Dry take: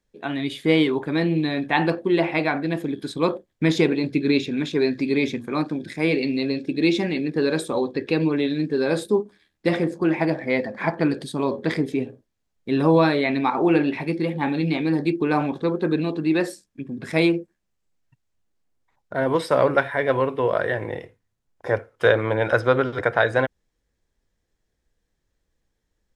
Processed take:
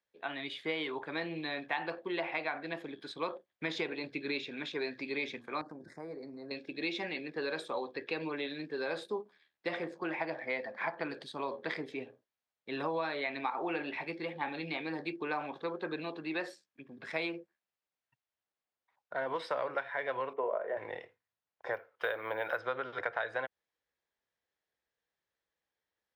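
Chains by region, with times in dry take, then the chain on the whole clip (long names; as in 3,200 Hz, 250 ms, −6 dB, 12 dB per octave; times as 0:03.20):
0:05.61–0:06.51: Butterworth band-reject 2,900 Hz, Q 0.61 + downward compressor 5 to 1, threshold −27 dBFS + low-shelf EQ 150 Hz +8.5 dB
0:20.33–0:20.77: loudspeaker in its box 200–2,100 Hz, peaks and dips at 210 Hz +7 dB, 410 Hz +8 dB, 620 Hz +9 dB, 950 Hz +3 dB, 1,700 Hz −9 dB + double-tracking delay 38 ms −11.5 dB + expander for the loud parts, over −25 dBFS
0:21.73–0:22.59: low-shelf EQ 88 Hz −11.5 dB + bad sample-rate conversion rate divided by 3×, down filtered, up hold
whole clip: high-pass filter 85 Hz; three-way crossover with the lows and the highs turned down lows −16 dB, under 520 Hz, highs −18 dB, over 5,000 Hz; downward compressor 5 to 1, threshold −25 dBFS; level −6 dB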